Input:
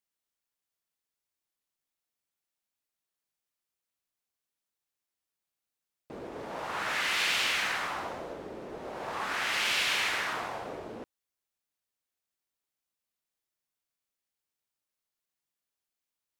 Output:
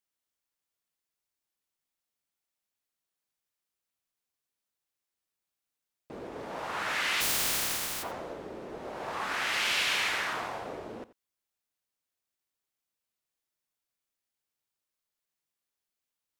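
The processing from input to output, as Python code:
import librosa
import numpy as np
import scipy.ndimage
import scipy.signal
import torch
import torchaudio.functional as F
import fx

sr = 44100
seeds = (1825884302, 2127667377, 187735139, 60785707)

y = fx.spec_flatten(x, sr, power=0.11, at=(7.2, 8.02), fade=0.02)
y = y + 10.0 ** (-17.5 / 20.0) * np.pad(y, (int(86 * sr / 1000.0), 0))[:len(y)]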